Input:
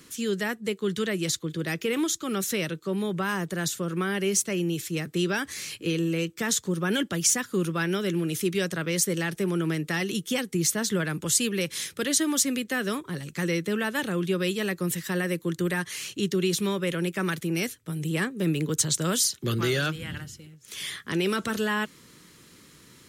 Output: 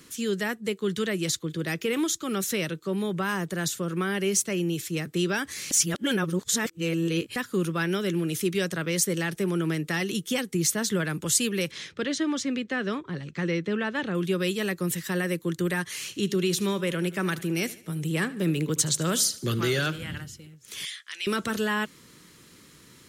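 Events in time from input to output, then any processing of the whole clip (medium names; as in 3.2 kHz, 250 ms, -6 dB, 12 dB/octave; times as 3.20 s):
5.71–7.36 s: reverse
11.71–14.15 s: distance through air 150 m
15.86–20.16 s: feedback delay 75 ms, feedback 46%, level -18 dB
20.85–21.27 s: Butterworth band-pass 4.5 kHz, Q 0.65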